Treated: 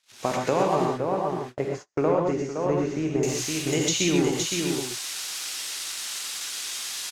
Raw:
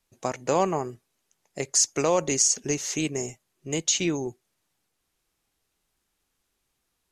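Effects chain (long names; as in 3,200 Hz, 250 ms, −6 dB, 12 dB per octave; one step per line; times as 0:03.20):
spike at every zero crossing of −23.5 dBFS
single-tap delay 515 ms −7 dB
downward compressor 6 to 1, threshold −24 dBFS, peak gain reduction 8 dB
low-pass filter 3,900 Hz 12 dB per octave, from 0:00.85 1,300 Hz, from 0:03.23 5,300 Hz
reverb whose tail is shaped and stops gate 150 ms rising, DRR 0.5 dB
noise gate −40 dBFS, range −35 dB
level +4.5 dB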